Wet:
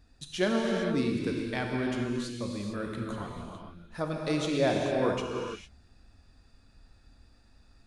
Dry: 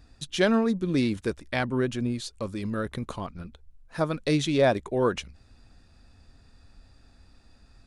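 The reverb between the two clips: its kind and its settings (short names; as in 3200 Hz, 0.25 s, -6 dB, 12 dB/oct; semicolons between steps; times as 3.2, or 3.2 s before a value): non-linear reverb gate 0.48 s flat, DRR -0.5 dB; gain -6.5 dB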